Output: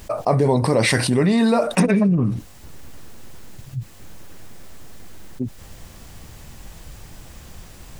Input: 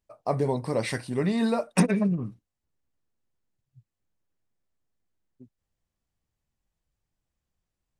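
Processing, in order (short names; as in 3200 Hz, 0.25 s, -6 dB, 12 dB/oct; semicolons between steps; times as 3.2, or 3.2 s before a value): fast leveller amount 70%; gain +2.5 dB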